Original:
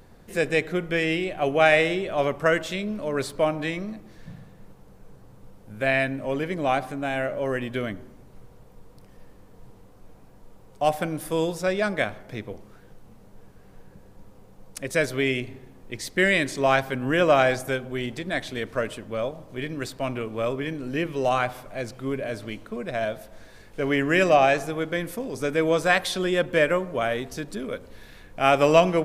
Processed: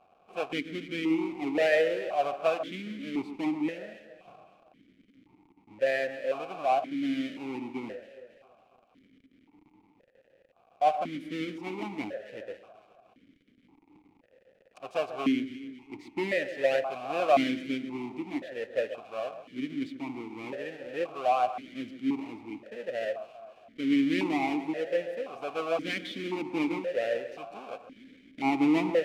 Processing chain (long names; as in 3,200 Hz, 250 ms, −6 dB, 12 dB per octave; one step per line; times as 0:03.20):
each half-wave held at its own peak
delay that swaps between a low-pass and a high-pass 137 ms, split 1,800 Hz, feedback 68%, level −11.5 dB
formant filter that steps through the vowels 1.9 Hz